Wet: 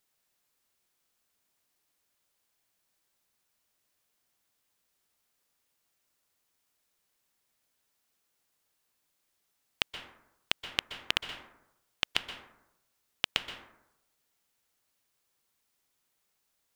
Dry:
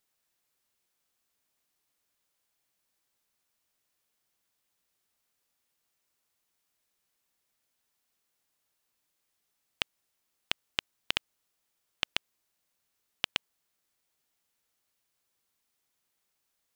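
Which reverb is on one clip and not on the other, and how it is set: plate-style reverb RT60 0.85 s, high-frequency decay 0.4×, pre-delay 115 ms, DRR 8 dB; trim +1.5 dB

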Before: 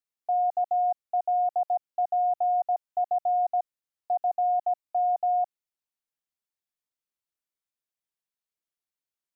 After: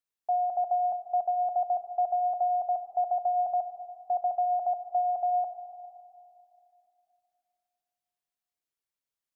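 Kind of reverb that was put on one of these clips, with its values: algorithmic reverb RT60 2.7 s, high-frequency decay 0.75×, pre-delay 15 ms, DRR 8.5 dB; trim -1 dB

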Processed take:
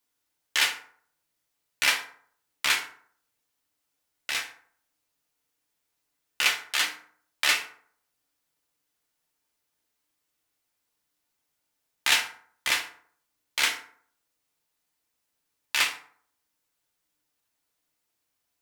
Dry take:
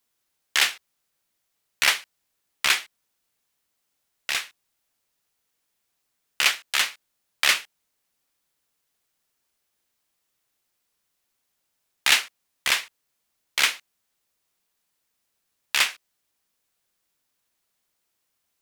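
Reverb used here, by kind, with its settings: FDN reverb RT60 0.56 s, low-frequency decay 1×, high-frequency decay 0.55×, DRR 2 dB; trim -4.5 dB

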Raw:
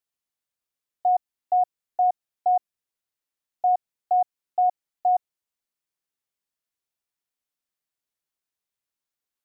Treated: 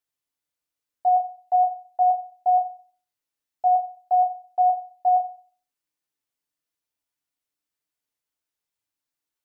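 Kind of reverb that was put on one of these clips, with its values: FDN reverb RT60 0.42 s, low-frequency decay 1.2×, high-frequency decay 0.95×, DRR 3 dB; trim -1 dB

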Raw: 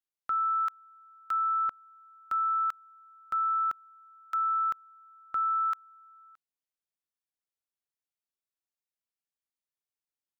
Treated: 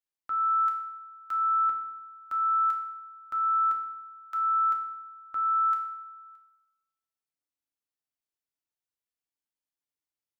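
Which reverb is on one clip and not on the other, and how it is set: FDN reverb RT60 0.95 s, low-frequency decay 1.3×, high-frequency decay 0.7×, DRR 1 dB; trim -4.5 dB

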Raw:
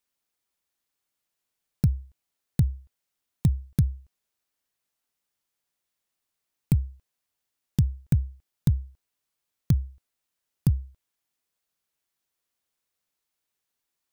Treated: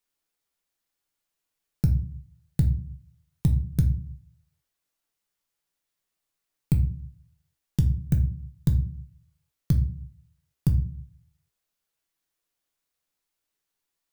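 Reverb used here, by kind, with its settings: simulated room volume 34 m³, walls mixed, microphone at 0.35 m; trim -1.5 dB

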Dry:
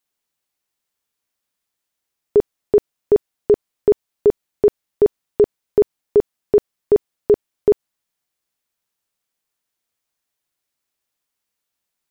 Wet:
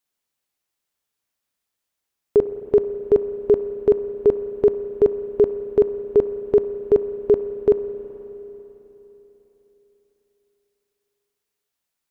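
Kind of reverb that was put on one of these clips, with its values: spring tank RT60 3.8 s, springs 32/54 ms, chirp 60 ms, DRR 9.5 dB; trim -1.5 dB

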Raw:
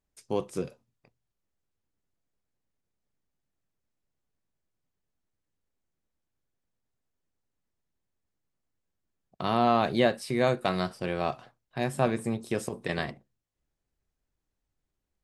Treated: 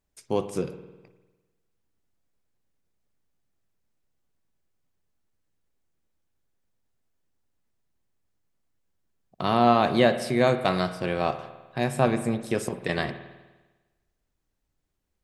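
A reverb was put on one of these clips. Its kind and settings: spring tank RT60 1.2 s, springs 50 ms, chirp 35 ms, DRR 10.5 dB; trim +3.5 dB

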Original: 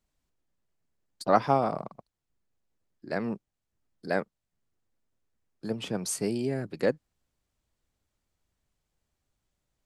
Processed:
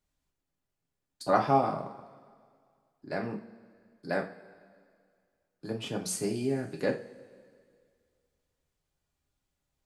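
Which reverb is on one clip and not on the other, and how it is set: two-slope reverb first 0.33 s, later 2.1 s, from -20 dB, DRR 0.5 dB; trim -4 dB

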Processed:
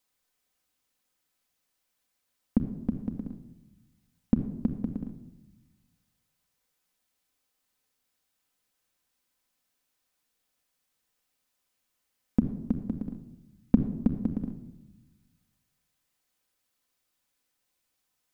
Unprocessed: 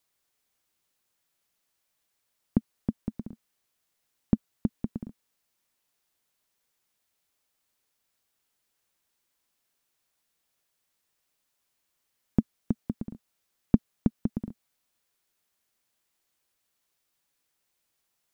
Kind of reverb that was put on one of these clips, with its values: simulated room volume 3700 m³, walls furnished, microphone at 2 m; trim -2 dB

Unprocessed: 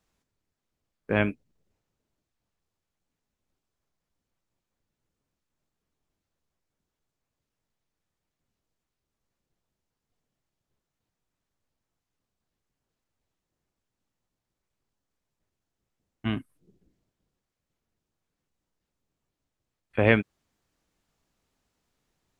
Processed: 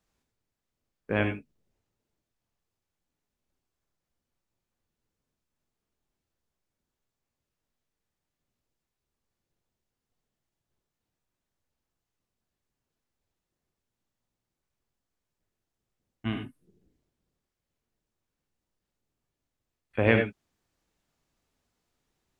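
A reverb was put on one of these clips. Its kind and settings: gated-style reverb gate 110 ms rising, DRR 4.5 dB; trim -3 dB

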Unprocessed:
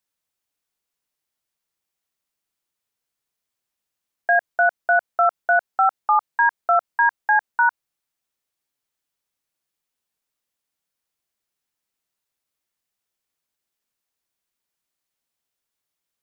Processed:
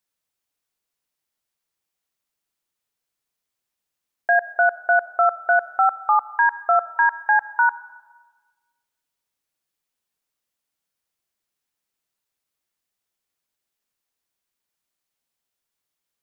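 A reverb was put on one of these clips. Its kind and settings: algorithmic reverb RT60 1.4 s, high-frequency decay 0.65×, pre-delay 25 ms, DRR 17 dB

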